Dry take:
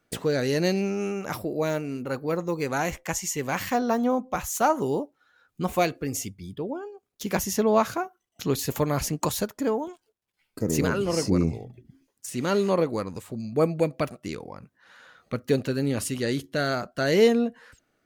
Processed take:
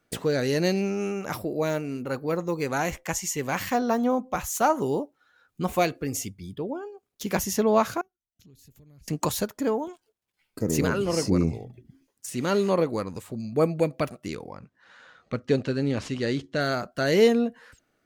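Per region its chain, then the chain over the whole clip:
8.01–9.08 passive tone stack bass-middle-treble 10-0-1 + compressor 4:1, threshold -51 dBFS
14.56–16.61 median filter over 5 samples + LPF 8500 Hz 24 dB/oct
whole clip: dry

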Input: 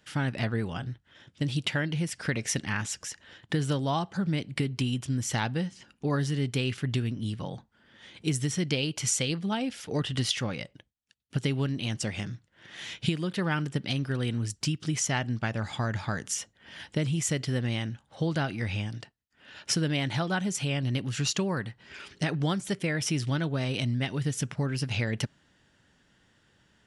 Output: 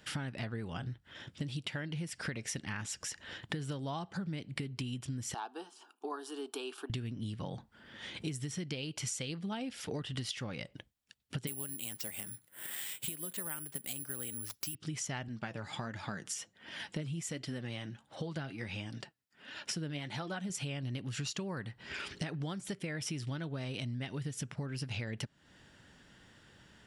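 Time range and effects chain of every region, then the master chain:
5.34–6.9 HPF 420 Hz 24 dB/oct + bell 5600 Hz -11 dB 1.6 oct + fixed phaser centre 540 Hz, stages 6
11.47–14.75 HPF 320 Hz 6 dB/oct + bell 8000 Hz -6.5 dB 0.56 oct + careless resampling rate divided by 4×, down none, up zero stuff
15.28–20.5 HPF 110 Hz + flange 1.4 Hz, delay 2.8 ms, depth 4.7 ms, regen +48%
whole clip: notch 6300 Hz, Q 16; compressor 6:1, threshold -42 dBFS; gain +5 dB

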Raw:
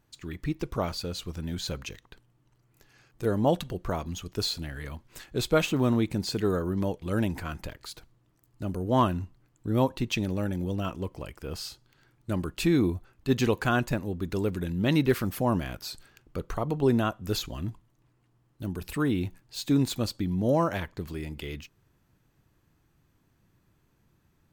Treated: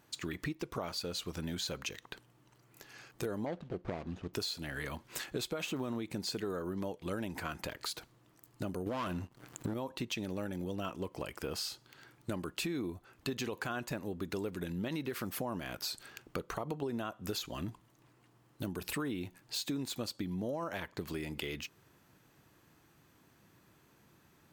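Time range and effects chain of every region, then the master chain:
3.46–4.34 median filter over 41 samples + air absorption 98 m
8.86–9.74 upward compressor, threshold -42 dBFS + sample leveller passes 2 + hard clip -16.5 dBFS
whole clip: HPF 290 Hz 6 dB/oct; limiter -20.5 dBFS; compressor 6:1, threshold -43 dBFS; gain +7.5 dB

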